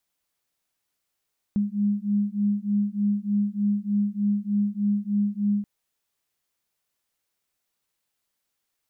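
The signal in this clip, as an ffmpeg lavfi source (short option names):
-f lavfi -i "aevalsrc='0.0596*(sin(2*PI*203*t)+sin(2*PI*206.3*t))':d=4.08:s=44100"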